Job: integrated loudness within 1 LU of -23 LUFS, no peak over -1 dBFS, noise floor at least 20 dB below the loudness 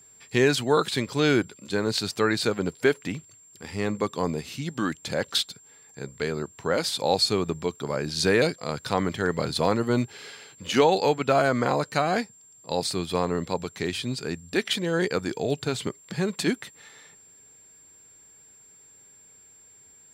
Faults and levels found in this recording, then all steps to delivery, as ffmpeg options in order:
steady tone 7.4 kHz; tone level -51 dBFS; loudness -26.0 LUFS; peak level -8.0 dBFS; loudness target -23.0 LUFS
-> -af "bandreject=f=7400:w=30"
-af "volume=1.41"

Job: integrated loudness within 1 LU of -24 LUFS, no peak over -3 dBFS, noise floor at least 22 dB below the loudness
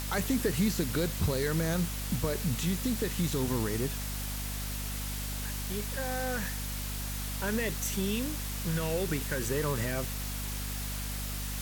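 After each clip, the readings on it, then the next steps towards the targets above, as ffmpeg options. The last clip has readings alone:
hum 50 Hz; highest harmonic 250 Hz; hum level -35 dBFS; noise floor -36 dBFS; noise floor target -54 dBFS; loudness -32.0 LUFS; peak level -17.5 dBFS; loudness target -24.0 LUFS
-> -af "bandreject=f=50:t=h:w=4,bandreject=f=100:t=h:w=4,bandreject=f=150:t=h:w=4,bandreject=f=200:t=h:w=4,bandreject=f=250:t=h:w=4"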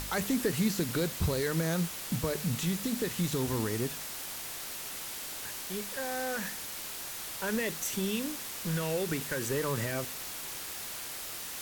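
hum not found; noise floor -41 dBFS; noise floor target -55 dBFS
-> -af "afftdn=nr=14:nf=-41"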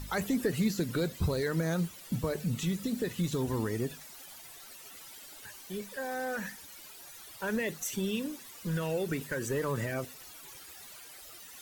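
noise floor -50 dBFS; noise floor target -56 dBFS
-> -af "afftdn=nr=6:nf=-50"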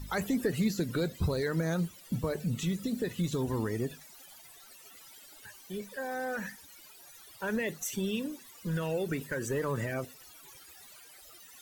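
noise floor -54 dBFS; noise floor target -56 dBFS
-> -af "afftdn=nr=6:nf=-54"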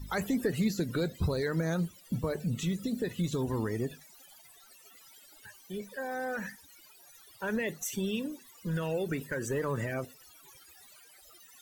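noise floor -57 dBFS; loudness -33.5 LUFS; peak level -19.0 dBFS; loudness target -24.0 LUFS
-> -af "volume=2.99"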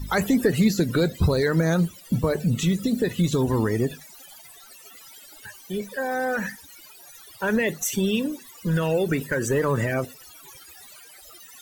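loudness -24.0 LUFS; peak level -9.5 dBFS; noise floor -48 dBFS

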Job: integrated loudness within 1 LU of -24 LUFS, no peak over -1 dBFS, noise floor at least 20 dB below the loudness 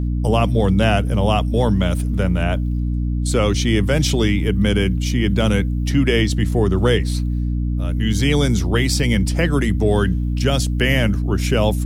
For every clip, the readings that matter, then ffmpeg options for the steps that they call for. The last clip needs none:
hum 60 Hz; highest harmonic 300 Hz; hum level -18 dBFS; loudness -18.5 LUFS; peak level -2.5 dBFS; loudness target -24.0 LUFS
-> -af "bandreject=f=60:t=h:w=4,bandreject=f=120:t=h:w=4,bandreject=f=180:t=h:w=4,bandreject=f=240:t=h:w=4,bandreject=f=300:t=h:w=4"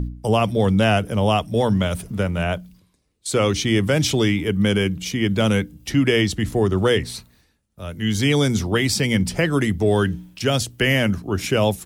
hum not found; loudness -20.5 LUFS; peak level -4.5 dBFS; loudness target -24.0 LUFS
-> -af "volume=0.668"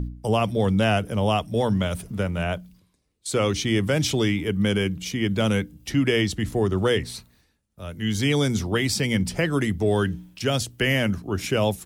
loudness -24.0 LUFS; peak level -8.0 dBFS; noise floor -66 dBFS

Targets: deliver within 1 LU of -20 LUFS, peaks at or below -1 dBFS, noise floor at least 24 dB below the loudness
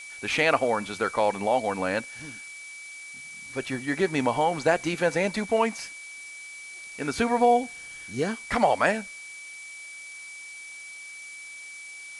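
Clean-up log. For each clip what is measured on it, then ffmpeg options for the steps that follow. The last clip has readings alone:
steady tone 2.3 kHz; tone level -40 dBFS; noise floor -42 dBFS; noise floor target -50 dBFS; loudness -25.5 LUFS; peak level -7.0 dBFS; loudness target -20.0 LUFS
-> -af "bandreject=f=2300:w=30"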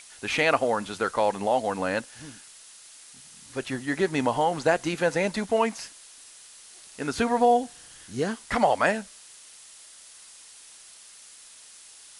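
steady tone not found; noise floor -49 dBFS; noise floor target -50 dBFS
-> -af "afftdn=nr=6:nf=-49"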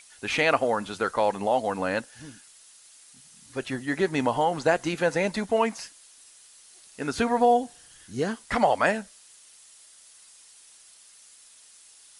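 noise floor -53 dBFS; loudness -25.5 LUFS; peak level -7.5 dBFS; loudness target -20.0 LUFS
-> -af "volume=1.88"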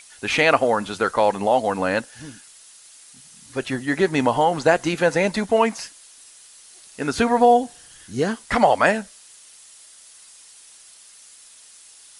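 loudness -20.5 LUFS; peak level -2.0 dBFS; noise floor -48 dBFS

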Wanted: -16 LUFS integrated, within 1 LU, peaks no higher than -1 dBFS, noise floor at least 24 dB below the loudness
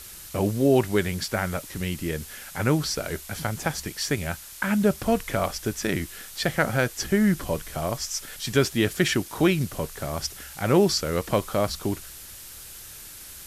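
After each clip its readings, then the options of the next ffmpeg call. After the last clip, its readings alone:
noise floor -43 dBFS; noise floor target -50 dBFS; loudness -26.0 LUFS; peak level -7.5 dBFS; loudness target -16.0 LUFS
-> -af "afftdn=nr=7:nf=-43"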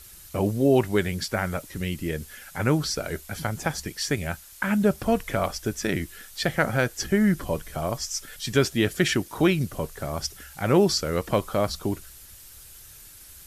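noise floor -47 dBFS; noise floor target -50 dBFS
-> -af "afftdn=nr=6:nf=-47"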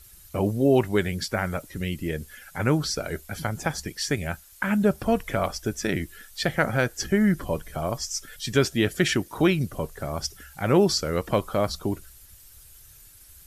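noise floor -50 dBFS; loudness -26.0 LUFS; peak level -7.5 dBFS; loudness target -16.0 LUFS
-> -af "volume=3.16,alimiter=limit=0.891:level=0:latency=1"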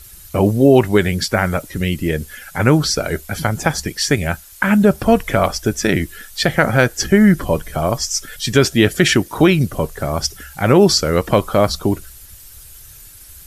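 loudness -16.5 LUFS; peak level -1.0 dBFS; noise floor -41 dBFS

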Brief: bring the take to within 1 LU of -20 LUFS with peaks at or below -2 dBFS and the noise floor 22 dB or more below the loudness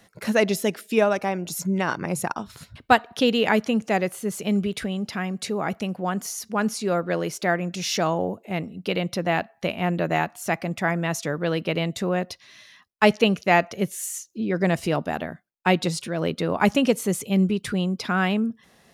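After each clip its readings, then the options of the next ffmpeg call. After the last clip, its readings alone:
loudness -24.5 LUFS; peak level -3.0 dBFS; loudness target -20.0 LUFS
-> -af "volume=1.68,alimiter=limit=0.794:level=0:latency=1"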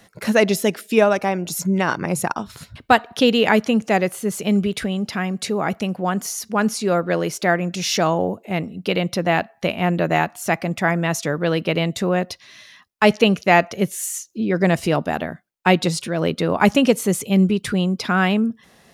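loudness -20.0 LUFS; peak level -2.0 dBFS; noise floor -54 dBFS

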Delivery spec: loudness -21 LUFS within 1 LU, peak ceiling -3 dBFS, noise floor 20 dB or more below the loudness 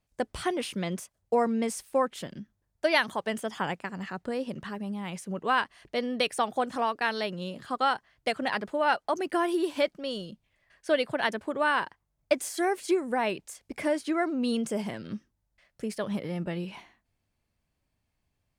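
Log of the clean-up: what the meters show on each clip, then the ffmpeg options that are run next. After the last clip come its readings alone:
loudness -30.0 LUFS; peak level -9.0 dBFS; loudness target -21.0 LUFS
-> -af "volume=2.82,alimiter=limit=0.708:level=0:latency=1"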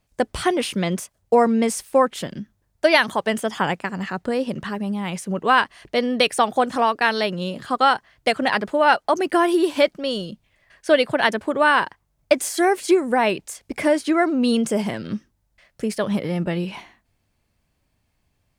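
loudness -21.0 LUFS; peak level -3.0 dBFS; noise floor -70 dBFS

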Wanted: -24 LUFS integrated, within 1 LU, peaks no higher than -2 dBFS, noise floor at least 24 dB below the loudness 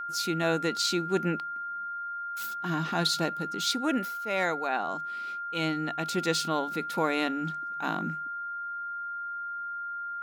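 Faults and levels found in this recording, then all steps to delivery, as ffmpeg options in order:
steady tone 1.4 kHz; tone level -33 dBFS; loudness -30.5 LUFS; peak level -13.0 dBFS; loudness target -24.0 LUFS
-> -af "bandreject=f=1400:w=30"
-af "volume=2.11"

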